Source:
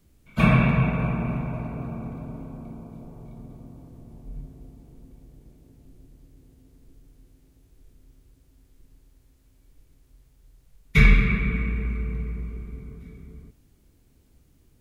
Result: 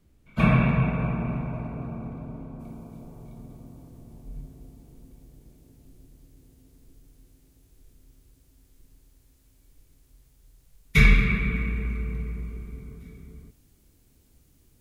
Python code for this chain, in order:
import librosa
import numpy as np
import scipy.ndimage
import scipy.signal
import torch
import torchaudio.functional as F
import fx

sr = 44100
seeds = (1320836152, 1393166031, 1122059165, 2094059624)

y = fx.high_shelf(x, sr, hz=4000.0, db=fx.steps((0.0, -6.5), (2.59, 7.5)))
y = y * 10.0 ** (-1.5 / 20.0)